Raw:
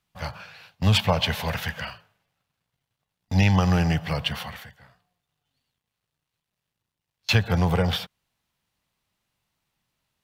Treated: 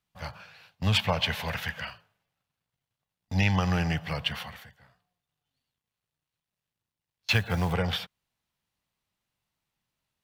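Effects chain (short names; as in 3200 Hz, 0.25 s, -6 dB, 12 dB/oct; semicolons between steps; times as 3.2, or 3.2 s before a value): dynamic EQ 2100 Hz, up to +5 dB, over -36 dBFS, Q 0.77; 7.3–7.73 companded quantiser 6-bit; gain -6 dB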